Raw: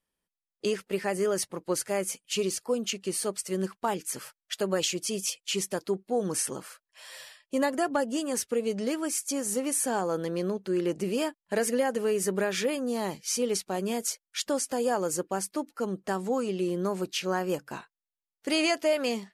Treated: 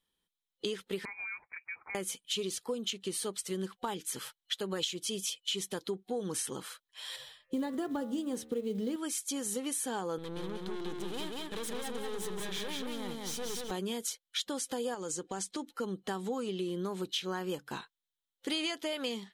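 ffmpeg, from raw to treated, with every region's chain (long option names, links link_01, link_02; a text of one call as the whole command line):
ffmpeg -i in.wav -filter_complex "[0:a]asettb=1/sr,asplit=3[link_01][link_02][link_03];[link_01]atrim=end=1.054[link_04];[link_02]atrim=start=1.05:end=1.95,asetpts=PTS-STARTPTS,afade=type=in:duration=0.004:curve=qsin,afade=type=out:start_time=0.896:duration=0.004:curve=qsin,highpass=frequency=440:width=0.5412,highpass=frequency=440:width=1.3066,acompressor=threshold=-39dB:ratio=4:attack=3.2:release=140:knee=1:detection=peak,lowpass=frequency=2400:width_type=q:width=0.5098,lowpass=frequency=2400:width_type=q:width=0.6013,lowpass=frequency=2400:width_type=q:width=0.9,lowpass=frequency=2400:width_type=q:width=2.563,afreqshift=-2800[link_05];[link_03]atrim=start=1.946[link_06];[link_04][link_05]acrossfade=duration=0.004:curve1=hsin:curve2=qsin[link_07];[link_07][link_06]acrossfade=duration=0.004:curve1=qsin:curve2=hsin,asettb=1/sr,asplit=3[link_08][link_09][link_10];[link_08]atrim=end=7.164[link_11];[link_09]atrim=start=7.16:end=8.96,asetpts=PTS-STARTPTS,afade=type=in:duration=0.004:curve=qsin,afade=type=out:start_time=1.796:duration=0.004:curve=qsin,tiltshelf=frequency=650:gain=7.5,bandreject=frequency=75.95:width_type=h:width=4,bandreject=frequency=151.9:width_type=h:width=4,bandreject=frequency=227.85:width_type=h:width=4,bandreject=frequency=303.8:width_type=h:width=4,bandreject=frequency=379.75:width_type=h:width=4,bandreject=frequency=455.7:width_type=h:width=4,bandreject=frequency=531.65:width_type=h:width=4,bandreject=frequency=607.6:width_type=h:width=4,bandreject=frequency=683.55:width_type=h:width=4,bandreject=frequency=759.5:width_type=h:width=4,bandreject=frequency=835.45:width_type=h:width=4,bandreject=frequency=911.4:width_type=h:width=4,bandreject=frequency=987.35:width_type=h:width=4,bandreject=frequency=1063.3:width_type=h:width=4,bandreject=frequency=1139.25:width_type=h:width=4,bandreject=frequency=1215.2:width_type=h:width=4,bandreject=frequency=1291.15:width_type=h:width=4,bandreject=frequency=1367.1:width_type=h:width=4,bandreject=frequency=1443.05:width_type=h:width=4,bandreject=frequency=1519:width_type=h:width=4,bandreject=frequency=1594.95:width_type=h:width=4,bandreject=frequency=1670.9:width_type=h:width=4,bandreject=frequency=1746.85:width_type=h:width=4,bandreject=frequency=1822.8:width_type=h:width=4,bandreject=frequency=1898.75:width_type=h:width=4,bandreject=frequency=1974.7:width_type=h:width=4,bandreject=frequency=2050.65:width_type=h:width=4,bandreject=frequency=2126.6:width_type=h:width=4,bandreject=frequency=2202.55:width_type=h:width=4,bandreject=frequency=2278.5:width_type=h:width=4,bandreject=frequency=2354.45:width_type=h:width=4,bandreject=frequency=2430.4:width_type=h:width=4,bandreject=frequency=2506.35:width_type=h:width=4,bandreject=frequency=2582.3:width_type=h:width=4,bandreject=frequency=2658.25:width_type=h:width=4,bandreject=frequency=2734.2:width_type=h:width=4,acrusher=bits=8:mode=log:mix=0:aa=0.000001[link_12];[link_10]atrim=start=8.956[link_13];[link_11][link_12]acrossfade=duration=0.004:curve1=hsin:curve2=qsin[link_14];[link_14][link_13]acrossfade=duration=0.004:curve1=qsin:curve2=hsin,asettb=1/sr,asplit=3[link_15][link_16][link_17];[link_15]atrim=end=10.184[link_18];[link_16]atrim=start=10.18:end=13.71,asetpts=PTS-STARTPTS,afade=type=in:duration=0.004:curve=qsin,afade=type=out:start_time=3.526:duration=0.004:curve=qsin,aeval=exprs='(tanh(56.2*val(0)+0.8)-tanh(0.8))/56.2':channel_layout=same,aecho=1:1:186|372|558|744:0.708|0.205|0.0595|0.0173,atrim=end_sample=155673[link_19];[link_17]atrim=start=13.706[link_20];[link_18][link_19]acrossfade=duration=0.004:curve1=hsin:curve2=qsin[link_21];[link_21][link_20]acrossfade=duration=0.004:curve1=qsin:curve2=hsin,asettb=1/sr,asplit=3[link_22][link_23][link_24];[link_22]atrim=end=14.944[link_25];[link_23]atrim=start=14.94:end=15.67,asetpts=PTS-STARTPTS,afade=type=in:duration=0.004:curve=qsin,afade=type=out:start_time=0.726:duration=0.004:curve=qsin,lowpass=frequency=7500:width_type=q:width=2,acompressor=threshold=-31dB:ratio=3:attack=3.2:release=140:knee=1:detection=peak[link_26];[link_24]atrim=start=15.666[link_27];[link_25][link_26]acrossfade=duration=0.004:curve1=hsin:curve2=qsin[link_28];[link_28][link_27]acrossfade=duration=0.004:curve1=qsin:curve2=hsin,superequalizer=8b=0.501:13b=2.82,acompressor=threshold=-34dB:ratio=3" out.wav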